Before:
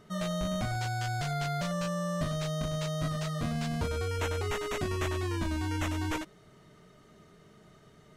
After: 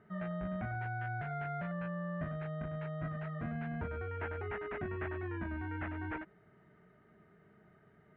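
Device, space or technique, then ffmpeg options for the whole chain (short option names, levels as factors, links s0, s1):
bass cabinet: -filter_complex "[0:a]acrossover=split=3400[s0][s1];[s1]acompressor=threshold=0.00112:ratio=4:attack=1:release=60[s2];[s0][s2]amix=inputs=2:normalize=0,highpass=62,equalizer=f=87:t=q:w=4:g=-4,equalizer=f=140:t=q:w=4:g=-4,equalizer=f=280:t=q:w=4:g=-5,equalizer=f=530:t=q:w=4:g=-7,equalizer=f=1100:t=q:w=4:g=-7,equalizer=f=1600:t=q:w=4:g=4,lowpass=f=2100:w=0.5412,lowpass=f=2100:w=1.3066,volume=0.631"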